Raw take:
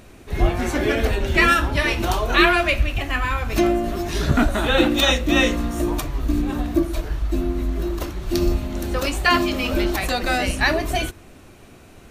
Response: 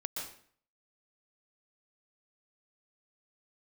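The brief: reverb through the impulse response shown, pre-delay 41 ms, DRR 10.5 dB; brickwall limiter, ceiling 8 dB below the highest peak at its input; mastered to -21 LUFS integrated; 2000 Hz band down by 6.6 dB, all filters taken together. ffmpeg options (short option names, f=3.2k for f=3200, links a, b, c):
-filter_complex "[0:a]equalizer=f=2k:t=o:g=-8.5,alimiter=limit=-13.5dB:level=0:latency=1,asplit=2[a][b];[1:a]atrim=start_sample=2205,adelay=41[c];[b][c]afir=irnorm=-1:irlink=0,volume=-12dB[d];[a][d]amix=inputs=2:normalize=0,volume=3dB"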